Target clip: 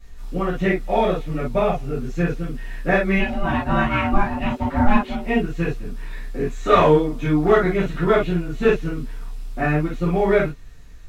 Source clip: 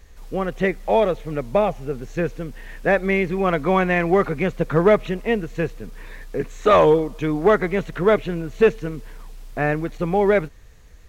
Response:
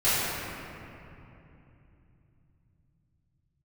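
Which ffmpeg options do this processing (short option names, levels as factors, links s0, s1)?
-filter_complex "[0:a]asplit=3[s0][s1][s2];[s0]afade=t=out:st=3.17:d=0.02[s3];[s1]aeval=exprs='val(0)*sin(2*PI*410*n/s)':c=same,afade=t=in:st=3.17:d=0.02,afade=t=out:st=5.19:d=0.02[s4];[s2]afade=t=in:st=5.19:d=0.02[s5];[s3][s4][s5]amix=inputs=3:normalize=0[s6];[1:a]atrim=start_sample=2205,atrim=end_sample=6174,asetrate=83790,aresample=44100[s7];[s6][s7]afir=irnorm=-1:irlink=0,volume=0.473"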